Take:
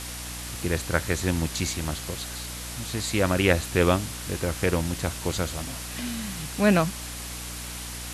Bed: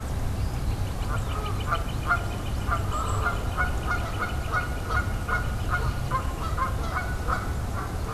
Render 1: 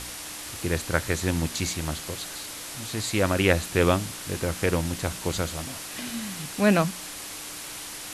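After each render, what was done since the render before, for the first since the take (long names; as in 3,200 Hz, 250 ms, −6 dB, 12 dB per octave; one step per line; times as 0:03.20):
hum removal 60 Hz, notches 4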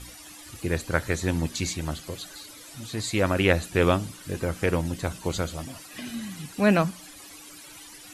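broadband denoise 14 dB, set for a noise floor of −38 dBFS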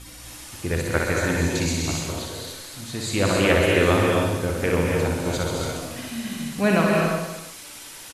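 reverse bouncing-ball delay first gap 60 ms, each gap 1.15×, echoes 5
reverb whose tail is shaped and stops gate 310 ms rising, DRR 0 dB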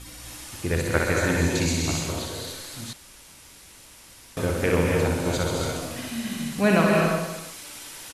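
0:02.93–0:04.37: fill with room tone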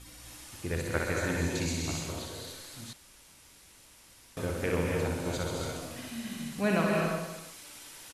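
level −8 dB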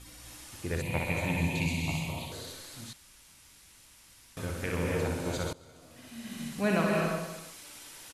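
0:00.82–0:02.32: drawn EQ curve 100 Hz 0 dB, 140 Hz +8 dB, 410 Hz −8 dB, 620 Hz 0 dB, 940 Hz +6 dB, 1,500 Hz −18 dB, 2,400 Hz +10 dB, 5,600 Hz −10 dB, 13,000 Hz +2 dB
0:02.89–0:04.81: parametric band 470 Hz −6 dB 1.8 octaves
0:05.53–0:06.44: fade in quadratic, from −20.5 dB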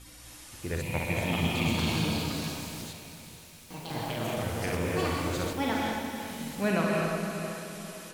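on a send: feedback delay with all-pass diffusion 473 ms, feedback 42%, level −8 dB
on the sum: delay with pitch and tempo change per echo 626 ms, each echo +5 semitones, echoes 2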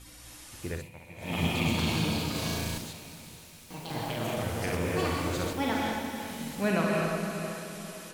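0:00.66–0:01.42: duck −17.5 dB, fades 0.24 s
0:02.31–0:02.78: flutter between parallel walls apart 6.1 metres, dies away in 0.83 s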